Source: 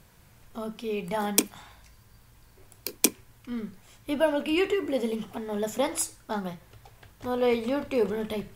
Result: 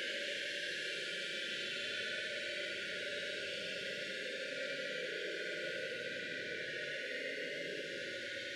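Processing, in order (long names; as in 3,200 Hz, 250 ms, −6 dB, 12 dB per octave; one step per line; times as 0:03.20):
linear delta modulator 64 kbit/s, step −21 dBFS
meter weighting curve A
brick-wall band-stop 610–1,400 Hz
dynamic equaliser 560 Hz, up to −6 dB, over −46 dBFS, Q 3.8
band-pass filter sweep 3,600 Hz → 660 Hz, 0:05.06–0:06.53
delay that swaps between a low-pass and a high-pass 344 ms, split 1,900 Hz, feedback 82%, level −5 dB
convolution reverb RT60 0.35 s, pre-delay 34 ms, DRR −3 dB
extreme stretch with random phases 24×, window 0.05 s, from 0:06.66
level −3.5 dB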